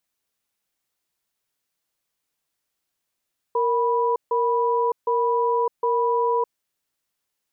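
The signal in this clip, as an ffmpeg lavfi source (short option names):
-f lavfi -i "aevalsrc='0.0891*(sin(2*PI*466*t)+sin(2*PI*982*t))*clip(min(mod(t,0.76),0.61-mod(t,0.76))/0.005,0,1)':d=2.94:s=44100"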